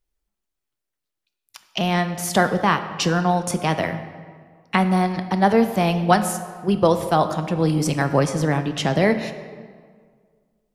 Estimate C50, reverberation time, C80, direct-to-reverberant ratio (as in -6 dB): 10.5 dB, 1.8 s, 11.5 dB, 8.5 dB